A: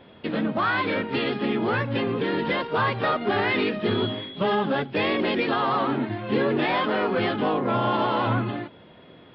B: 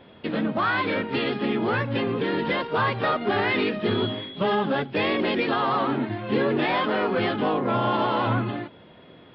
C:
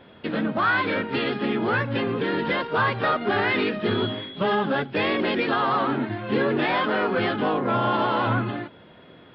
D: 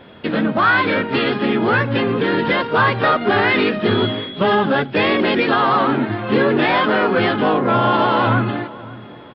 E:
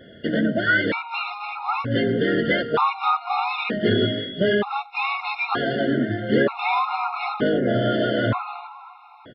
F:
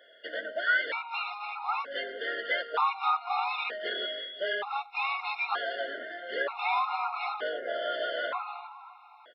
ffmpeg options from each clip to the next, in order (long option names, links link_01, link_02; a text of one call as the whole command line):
ffmpeg -i in.wav -af anull out.wav
ffmpeg -i in.wav -af "equalizer=frequency=1500:width=3:gain=4" out.wav
ffmpeg -i in.wav -filter_complex "[0:a]asplit=2[link_01][link_02];[link_02]adelay=554,lowpass=frequency=1400:poles=1,volume=-18dB,asplit=2[link_03][link_04];[link_04]adelay=554,lowpass=frequency=1400:poles=1,volume=0.39,asplit=2[link_05][link_06];[link_06]adelay=554,lowpass=frequency=1400:poles=1,volume=0.39[link_07];[link_01][link_03][link_05][link_07]amix=inputs=4:normalize=0,volume=7dB" out.wav
ffmpeg -i in.wav -af "afftfilt=real='re*gt(sin(2*PI*0.54*pts/sr)*(1-2*mod(floor(b*sr/1024/710),2)),0)':imag='im*gt(sin(2*PI*0.54*pts/sr)*(1-2*mod(floor(b*sr/1024/710),2)),0)':win_size=1024:overlap=0.75,volume=-2.5dB" out.wav
ffmpeg -i in.wav -af "highpass=frequency=580:width=0.5412,highpass=frequency=580:width=1.3066,volume=-6dB" out.wav